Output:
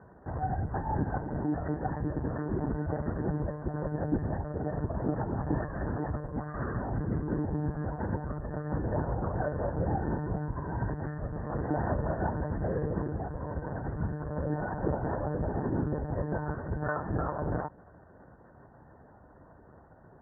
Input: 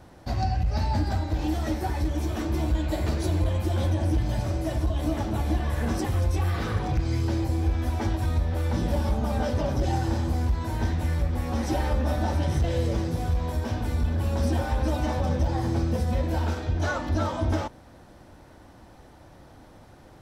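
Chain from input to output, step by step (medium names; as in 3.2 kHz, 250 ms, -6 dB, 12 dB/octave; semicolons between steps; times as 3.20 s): steep low-pass 1.8 kHz 96 dB/octave; monotone LPC vocoder at 8 kHz 150 Hz; high-pass 68 Hz; trim -3 dB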